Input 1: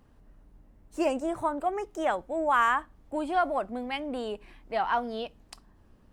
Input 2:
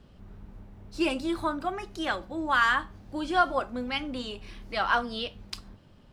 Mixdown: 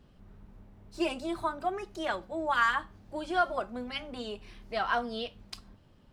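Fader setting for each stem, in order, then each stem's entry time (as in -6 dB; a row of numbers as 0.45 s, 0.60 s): -8.0 dB, -5.5 dB; 0.00 s, 0.00 s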